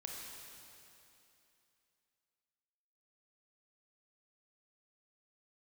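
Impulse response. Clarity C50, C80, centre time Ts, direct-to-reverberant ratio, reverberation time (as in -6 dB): 0.0 dB, 1.0 dB, 0.132 s, -1.0 dB, 2.9 s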